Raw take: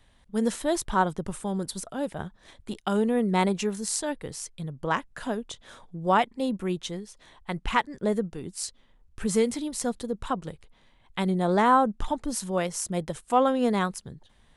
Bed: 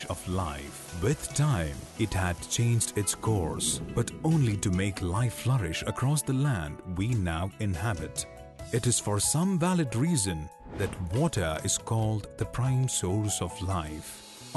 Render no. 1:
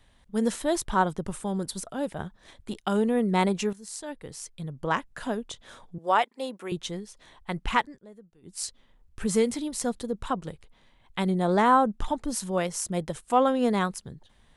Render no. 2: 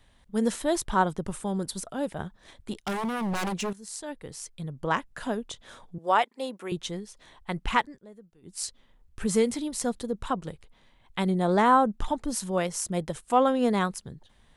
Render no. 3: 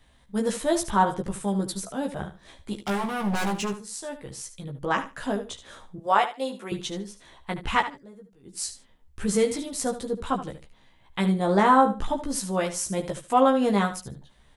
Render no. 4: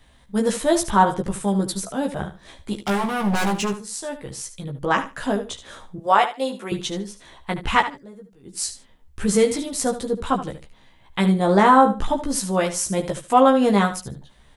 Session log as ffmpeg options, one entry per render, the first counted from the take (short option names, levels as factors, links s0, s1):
-filter_complex "[0:a]asettb=1/sr,asplit=3[s0][s1][s2];[s0]atrim=end=5.984[s3];[s1]atrim=start=5.98:end=6.72,asetpts=PTS-STARTPTS,afade=t=in:d=0.004:c=qsin,afade=t=out:st=0.736:d=0.004:c=qsin,highpass=460[s4];[s2]atrim=start=6.716[s5];[s3][s4]acrossfade=d=0.004:c1=hsin:c2=qsin[s6];[s6][s5]acrossfade=d=0.004:c1=qsin:c2=hsin,asplit=4[s7][s8][s9][s10];[s7]atrim=end=3.73,asetpts=PTS-STARTPTS,afade=t=out:st=3.726:d=0.004:c=hsin:silence=0.16788[s11];[s8]atrim=start=3.73:end=8,asetpts=PTS-STARTPTS,afade=t=in:d=1.05:silence=0.16788,afade=t=out:st=4.1:d=0.17:silence=0.0707946[s12];[s9]atrim=start=8:end=8.42,asetpts=PTS-STARTPTS,volume=0.0708[s13];[s10]atrim=start=8.42,asetpts=PTS-STARTPTS,afade=t=in:d=0.17:silence=0.0707946[s14];[s11][s12][s13][s14]concat=n=4:v=0:a=1"
-filter_complex "[0:a]asettb=1/sr,asplit=3[s0][s1][s2];[s0]atrim=end=2.784[s3];[s1]atrim=start=2.78:end=3.82,asetpts=PTS-STARTPTS,afade=t=in:d=0.004:c=qsin,afade=t=out:st=1.036:d=0.004:c=qsin,aeval=exprs='0.0631*(abs(mod(val(0)/0.0631+3,4)-2)-1)':c=same[s4];[s2]atrim=start=3.816[s5];[s3][s4]acrossfade=d=0.004:c1=hsin:c2=qsin[s6];[s6][s5]acrossfade=d=0.004:c1=qsin:c2=hsin"
-filter_complex "[0:a]asplit=2[s0][s1];[s1]adelay=15,volume=0.708[s2];[s0][s2]amix=inputs=2:normalize=0,asplit=2[s3][s4];[s4]aecho=0:1:74|148:0.251|0.0427[s5];[s3][s5]amix=inputs=2:normalize=0"
-af "volume=1.78,alimiter=limit=0.708:level=0:latency=1"